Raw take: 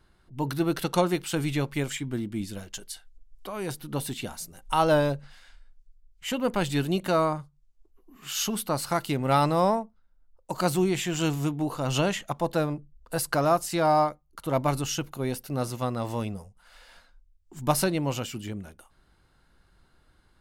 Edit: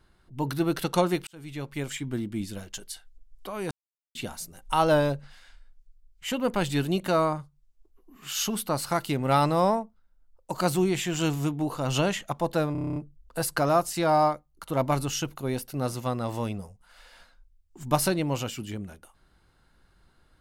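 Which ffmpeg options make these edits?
ffmpeg -i in.wav -filter_complex "[0:a]asplit=12[link_01][link_02][link_03][link_04][link_05][link_06][link_07][link_08][link_09][link_10][link_11][link_12];[link_01]atrim=end=1.27,asetpts=PTS-STARTPTS,afade=type=out:start_time=1.266:duration=0.004:curve=hsin[link_13];[link_02]atrim=start=1.27:end=3.71,asetpts=PTS-STARTPTS,afade=type=in:duration=0.82,afade=type=out:start_time=2.436:duration=0.004:curve=hsin[link_14];[link_03]atrim=start=3.71:end=4.15,asetpts=PTS-STARTPTS,volume=0[link_15];[link_04]atrim=start=4.15:end=12.752,asetpts=PTS-STARTPTS,afade=type=in:duration=0.004:curve=hsin[link_16];[link_05]atrim=start=12.718:end=12.752[link_17];[link_06]atrim=start=12.718:end=12.752[link_18];[link_07]atrim=start=12.718:end=12.752[link_19];[link_08]atrim=start=12.718:end=12.752[link_20];[link_09]atrim=start=12.718:end=12.752[link_21];[link_10]atrim=start=12.718:end=12.752[link_22];[link_11]atrim=start=12.718:end=12.752[link_23];[link_12]atrim=start=12.718[link_24];[link_13][link_14][link_15][link_16]concat=n=4:v=0:a=1[link_25];[link_25][link_17]acrossfade=duration=0.004:curve1=hsin:curve2=hsin[link_26];[link_26][link_18]acrossfade=duration=0.004:curve1=hsin:curve2=hsin[link_27];[link_27][link_19]acrossfade=duration=0.004:curve1=hsin:curve2=hsin[link_28];[link_28][link_20]acrossfade=duration=0.004:curve1=hsin:curve2=hsin[link_29];[link_29][link_21]acrossfade=duration=0.004:curve1=hsin:curve2=hsin[link_30];[link_30][link_22]acrossfade=duration=0.004:curve1=hsin:curve2=hsin[link_31];[link_31][link_23]acrossfade=duration=0.004:curve1=hsin:curve2=hsin[link_32];[link_32][link_24]acrossfade=duration=0.004:curve1=hsin:curve2=hsin" out.wav

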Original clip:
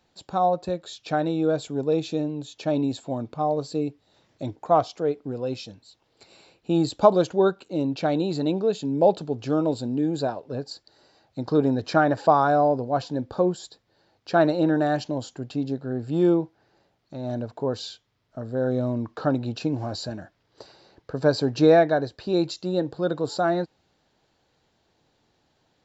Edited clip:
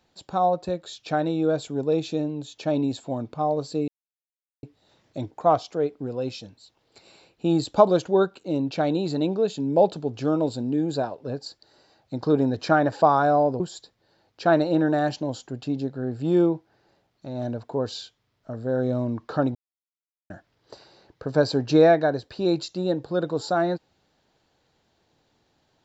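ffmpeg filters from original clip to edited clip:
ffmpeg -i in.wav -filter_complex "[0:a]asplit=5[link_01][link_02][link_03][link_04][link_05];[link_01]atrim=end=3.88,asetpts=PTS-STARTPTS,afade=type=out:start_time=3.876:duration=0.004:curve=hsin,apad=pad_dur=0.75[link_06];[link_02]atrim=start=3.88:end=12.852,asetpts=PTS-STARTPTS,afade=type=in:duration=0.004:curve=hsin[link_07];[link_03]atrim=start=13.478:end=19.43,asetpts=PTS-STARTPTS,afade=type=out:start_time=5.948:duration=0.004:curve=hsin[link_08];[link_04]atrim=start=19.43:end=20.18,asetpts=PTS-STARTPTS,volume=0[link_09];[link_05]atrim=start=20.18,asetpts=PTS-STARTPTS,afade=type=in:duration=0.004:curve=hsin[link_10];[link_06][link_07]concat=n=2:v=0:a=1[link_11];[link_08][link_09][link_10]concat=n=3:v=0:a=1[link_12];[link_11][link_12]acrossfade=duration=0.004:curve1=hsin:curve2=hsin" out.wav

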